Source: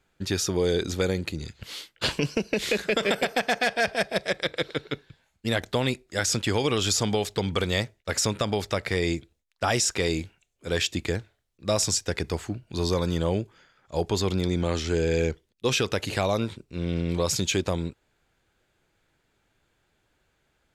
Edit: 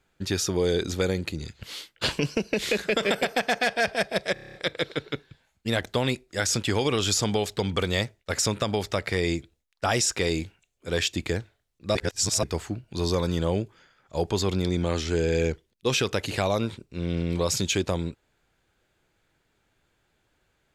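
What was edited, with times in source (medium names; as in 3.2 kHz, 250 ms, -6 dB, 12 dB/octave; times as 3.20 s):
4.33 s: stutter 0.03 s, 8 plays
11.74–12.22 s: reverse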